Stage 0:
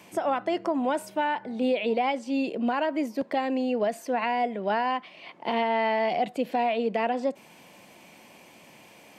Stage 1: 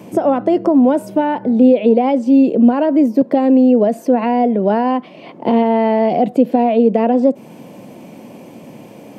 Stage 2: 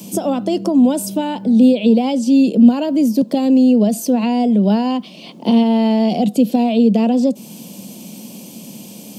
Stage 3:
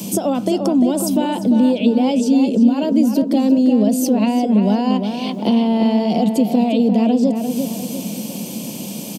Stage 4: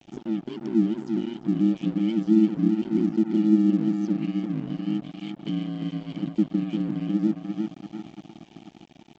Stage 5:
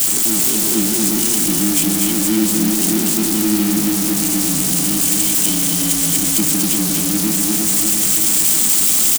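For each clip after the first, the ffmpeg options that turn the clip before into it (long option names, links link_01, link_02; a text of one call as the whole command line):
ffmpeg -i in.wav -filter_complex "[0:a]equalizer=frequency=125:width_type=o:width=1:gain=11,equalizer=frequency=250:width_type=o:width=1:gain=11,equalizer=frequency=500:width_type=o:width=1:gain=8,equalizer=frequency=2000:width_type=o:width=1:gain=-5,equalizer=frequency=4000:width_type=o:width=1:gain=-4,equalizer=frequency=8000:width_type=o:width=1:gain=-3,asplit=2[link_01][link_02];[link_02]acompressor=threshold=-21dB:ratio=6,volume=3dB[link_03];[link_01][link_03]amix=inputs=2:normalize=0" out.wav
ffmpeg -i in.wav -filter_complex "[0:a]equalizer=frequency=200:width_type=o:width=0.67:gain=13,acrossover=split=140[link_01][link_02];[link_02]aexciter=amount=11:drive=3.5:freq=2900[link_03];[link_01][link_03]amix=inputs=2:normalize=0,volume=-6.5dB" out.wav
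ffmpeg -i in.wav -filter_complex "[0:a]acompressor=threshold=-27dB:ratio=2,asplit=2[link_01][link_02];[link_02]adelay=348,lowpass=frequency=2400:poles=1,volume=-6dB,asplit=2[link_03][link_04];[link_04]adelay=348,lowpass=frequency=2400:poles=1,volume=0.47,asplit=2[link_05][link_06];[link_06]adelay=348,lowpass=frequency=2400:poles=1,volume=0.47,asplit=2[link_07][link_08];[link_08]adelay=348,lowpass=frequency=2400:poles=1,volume=0.47,asplit=2[link_09][link_10];[link_10]adelay=348,lowpass=frequency=2400:poles=1,volume=0.47,asplit=2[link_11][link_12];[link_12]adelay=348,lowpass=frequency=2400:poles=1,volume=0.47[link_13];[link_01][link_03][link_05][link_07][link_09][link_11][link_13]amix=inputs=7:normalize=0,volume=6.5dB" out.wav
ffmpeg -i in.wav -filter_complex "[0:a]asplit=3[link_01][link_02][link_03];[link_01]bandpass=frequency=270:width_type=q:width=8,volume=0dB[link_04];[link_02]bandpass=frequency=2290:width_type=q:width=8,volume=-6dB[link_05];[link_03]bandpass=frequency=3010:width_type=q:width=8,volume=-9dB[link_06];[link_04][link_05][link_06]amix=inputs=3:normalize=0,aresample=16000,aeval=exprs='sgn(val(0))*max(abs(val(0))-0.0126,0)':channel_layout=same,aresample=44100,aeval=exprs='val(0)*sin(2*PI*55*n/s)':channel_layout=same" out.wav
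ffmpeg -i in.wav -af "aeval=exprs='val(0)+0.5*0.0708*sgn(val(0))':channel_layout=same,aecho=1:1:242:0.708,crystalizer=i=7:c=0,volume=-1dB" out.wav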